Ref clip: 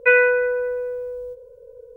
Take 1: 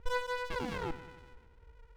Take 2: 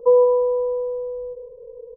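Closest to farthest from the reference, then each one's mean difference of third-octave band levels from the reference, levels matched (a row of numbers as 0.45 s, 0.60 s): 2, 1; 3.0 dB, 15.0 dB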